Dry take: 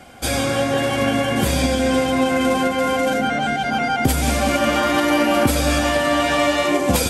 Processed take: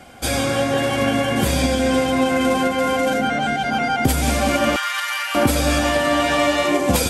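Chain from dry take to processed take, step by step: 4.76–5.35 HPF 1200 Hz 24 dB/oct

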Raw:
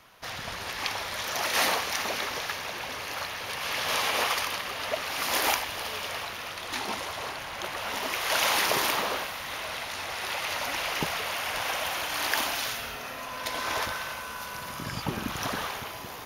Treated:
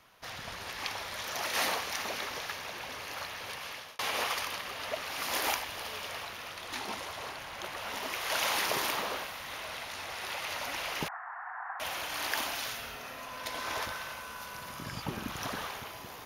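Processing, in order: 3.48–3.99 fade out; 11.08–11.8 Chebyshev band-pass 730–1800 Hz, order 4; gain -5.5 dB

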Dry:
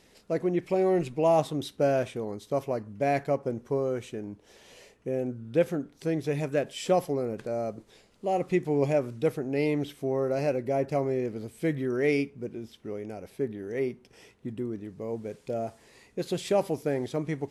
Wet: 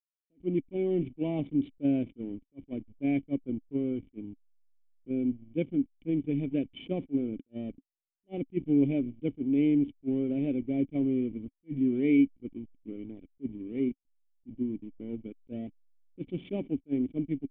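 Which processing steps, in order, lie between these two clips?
backlash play -32 dBFS; vocal tract filter i; attack slew limiter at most 540 dB/s; gain +9 dB

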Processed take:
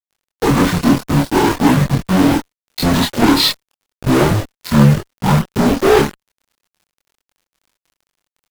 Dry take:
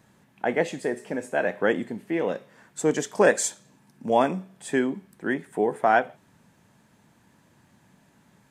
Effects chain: pitch shift by moving bins -10 st; high shelf 2400 Hz -5.5 dB; requantised 8-bit, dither none; fuzz box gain 40 dB, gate -38 dBFS; crackle 17/s -44 dBFS; chorus voices 6, 0.38 Hz, delay 25 ms, depth 3.8 ms; gain +6.5 dB

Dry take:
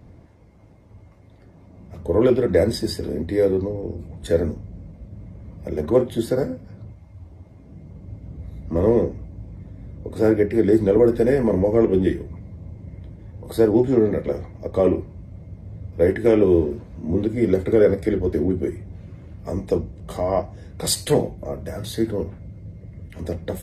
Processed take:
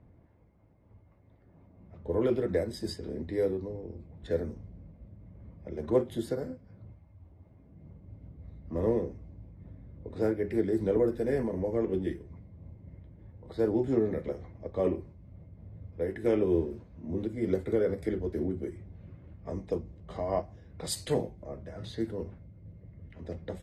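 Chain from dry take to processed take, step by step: low-pass opened by the level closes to 2300 Hz, open at -17.5 dBFS; noise-modulated level, depth 60%; gain -8 dB

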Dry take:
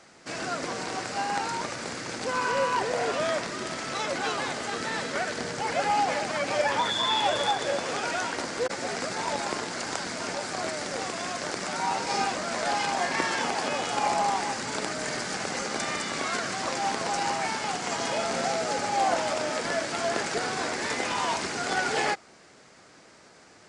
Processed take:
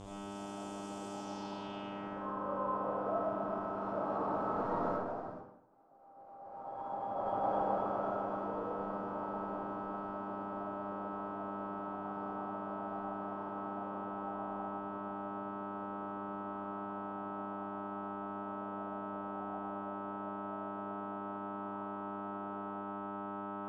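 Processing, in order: delta modulation 64 kbps, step -30.5 dBFS; Doppler pass-by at 5.49, 16 m/s, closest 1.2 m; echo with dull and thin repeats by turns 0.126 s, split 1000 Hz, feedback 80%, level -2 dB; buzz 100 Hz, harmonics 36, -58 dBFS -2 dB/oct; negative-ratio compressor -49 dBFS, ratio -0.5; EQ curve 410 Hz 0 dB, 1100 Hz +4 dB, 1900 Hz -12 dB, 5300 Hz -6 dB; low-pass sweep 7900 Hz -> 1300 Hz, 1.06–2.26; bell 1600 Hz -12.5 dB 2.3 oct; reverb RT60 0.75 s, pre-delay 20 ms, DRR -6 dB; gain +7 dB

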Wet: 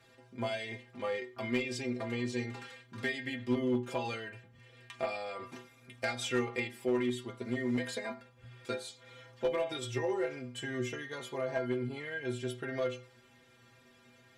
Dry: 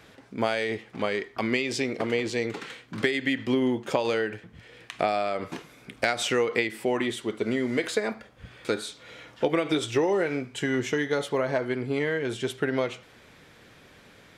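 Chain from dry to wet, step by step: metallic resonator 120 Hz, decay 0.33 s, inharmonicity 0.008; one-sided clip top -28 dBFS; gain +2 dB

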